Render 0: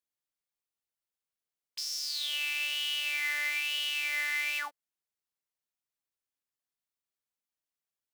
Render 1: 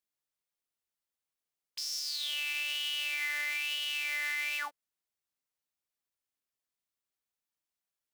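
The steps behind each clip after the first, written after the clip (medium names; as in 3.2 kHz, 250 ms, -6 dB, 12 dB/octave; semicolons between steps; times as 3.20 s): peak limiter -24.5 dBFS, peak gain reduction 4 dB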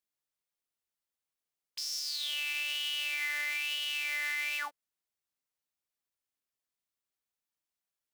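no audible change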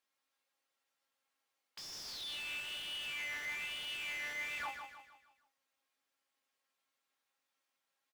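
feedback comb 270 Hz, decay 0.16 s, harmonics all, mix 80%; overdrive pedal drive 30 dB, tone 2 kHz, clips at -30 dBFS; on a send: feedback delay 156 ms, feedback 43%, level -7 dB; on the sum: trim -2.5 dB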